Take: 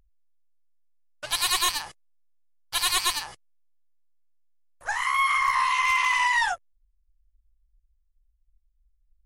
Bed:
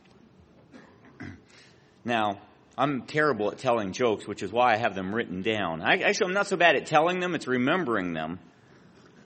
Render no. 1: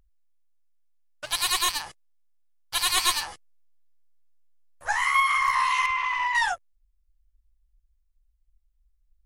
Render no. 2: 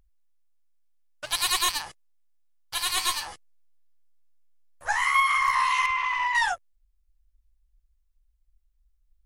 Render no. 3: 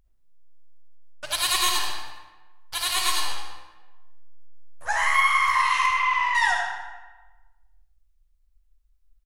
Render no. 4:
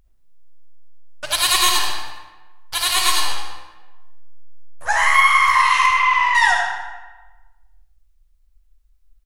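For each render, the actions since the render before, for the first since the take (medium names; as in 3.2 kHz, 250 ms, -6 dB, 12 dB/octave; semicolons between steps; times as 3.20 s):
1.25–1.75 s: companding laws mixed up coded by A; 2.96–5.20 s: doubling 12 ms -2 dB; 5.86–6.35 s: tape spacing loss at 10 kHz 24 dB
2.74–3.26 s: feedback comb 54 Hz, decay 0.22 s
feedback delay 80 ms, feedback 51%, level -13 dB; algorithmic reverb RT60 1.2 s, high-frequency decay 0.7×, pre-delay 25 ms, DRR 1 dB
trim +6.5 dB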